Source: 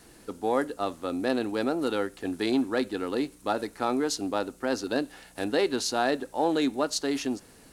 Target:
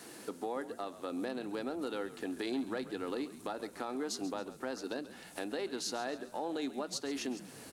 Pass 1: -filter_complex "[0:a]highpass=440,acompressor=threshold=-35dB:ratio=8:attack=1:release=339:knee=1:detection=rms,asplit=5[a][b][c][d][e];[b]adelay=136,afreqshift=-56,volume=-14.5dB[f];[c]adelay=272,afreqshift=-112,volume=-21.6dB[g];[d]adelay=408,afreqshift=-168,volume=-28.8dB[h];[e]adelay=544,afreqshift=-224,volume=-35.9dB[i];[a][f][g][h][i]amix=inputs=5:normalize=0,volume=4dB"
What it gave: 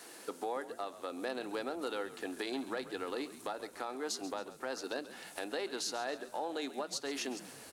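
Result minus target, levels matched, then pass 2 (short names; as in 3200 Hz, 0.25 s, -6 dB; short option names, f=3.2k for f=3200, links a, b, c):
250 Hz band -4.0 dB
-filter_complex "[0:a]highpass=210,acompressor=threshold=-35dB:ratio=8:attack=1:release=339:knee=1:detection=rms,asplit=5[a][b][c][d][e];[b]adelay=136,afreqshift=-56,volume=-14.5dB[f];[c]adelay=272,afreqshift=-112,volume=-21.6dB[g];[d]adelay=408,afreqshift=-168,volume=-28.8dB[h];[e]adelay=544,afreqshift=-224,volume=-35.9dB[i];[a][f][g][h][i]amix=inputs=5:normalize=0,volume=4dB"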